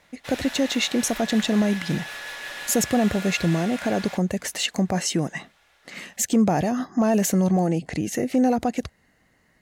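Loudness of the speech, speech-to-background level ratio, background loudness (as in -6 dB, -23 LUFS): -23.5 LUFS, 11.5 dB, -35.0 LUFS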